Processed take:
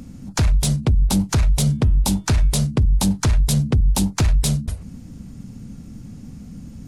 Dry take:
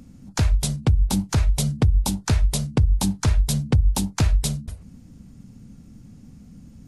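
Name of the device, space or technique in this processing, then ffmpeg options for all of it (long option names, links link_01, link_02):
soft clipper into limiter: -filter_complex "[0:a]asoftclip=type=tanh:threshold=-14.5dB,alimiter=limit=-19.5dB:level=0:latency=1:release=14,asettb=1/sr,asplit=3[link_01][link_02][link_03];[link_01]atrim=end=1.574[link_04];[link_02]atrim=start=1.57:end=2.59,asetpts=PTS-STARTPTS,afade=type=in:duration=0.004:curve=qsin,afade=type=out:start_time=1.016:duration=0.004:curve=qsin,bandreject=frequency=318.7:width_type=h:width=4,bandreject=frequency=637.4:width_type=h:width=4,bandreject=frequency=956.1:width_type=h:width=4,bandreject=frequency=1274.8:width_type=h:width=4,bandreject=frequency=1593.5:width_type=h:width=4,bandreject=frequency=1912.2:width_type=h:width=4,bandreject=frequency=2230.9:width_type=h:width=4,bandreject=frequency=2549.6:width_type=h:width=4,bandreject=frequency=2868.3:width_type=h:width=4,bandreject=frequency=3187:width_type=h:width=4,bandreject=frequency=3505.7:width_type=h:width=4[link_05];[link_03]atrim=start=2.586[link_06];[link_04][link_05]acrossfade=duration=0.004:curve1=hsin:curve2=qsin[link_07];[link_07][link_06]acrossfade=duration=0.004:curve1=qsin:curve2=hsin,volume=8dB"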